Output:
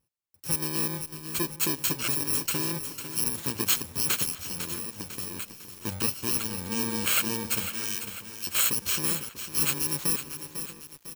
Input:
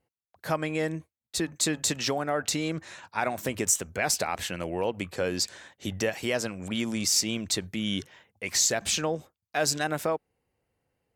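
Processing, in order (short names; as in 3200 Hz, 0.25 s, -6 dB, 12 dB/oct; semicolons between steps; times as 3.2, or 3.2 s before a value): FFT order left unsorted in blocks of 64 samples; 4.3–5.71 compressor 6:1, threshold -33 dBFS, peak gain reduction 9.5 dB; 7.69–8.47 steep high-pass 1300 Hz; outdoor echo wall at 110 m, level -14 dB; lo-fi delay 0.5 s, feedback 55%, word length 7-bit, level -9 dB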